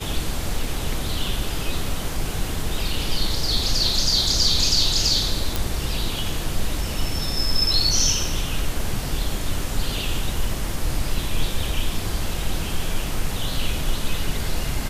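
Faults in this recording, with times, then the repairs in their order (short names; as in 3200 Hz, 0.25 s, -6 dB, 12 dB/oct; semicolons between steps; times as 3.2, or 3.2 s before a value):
5.56 pop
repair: de-click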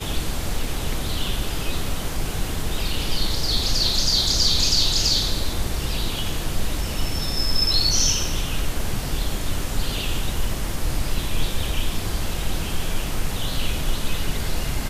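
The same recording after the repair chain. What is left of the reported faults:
none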